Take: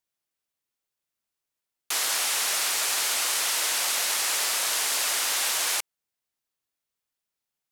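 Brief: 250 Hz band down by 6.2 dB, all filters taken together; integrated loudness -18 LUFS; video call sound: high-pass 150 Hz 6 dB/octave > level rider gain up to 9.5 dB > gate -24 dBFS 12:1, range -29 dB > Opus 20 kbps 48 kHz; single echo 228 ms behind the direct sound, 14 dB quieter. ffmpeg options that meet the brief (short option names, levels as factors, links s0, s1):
-af "highpass=f=150:p=1,equalizer=f=250:t=o:g=-8,aecho=1:1:228:0.2,dynaudnorm=m=2.99,agate=range=0.0355:threshold=0.0631:ratio=12,volume=2.24" -ar 48000 -c:a libopus -b:a 20k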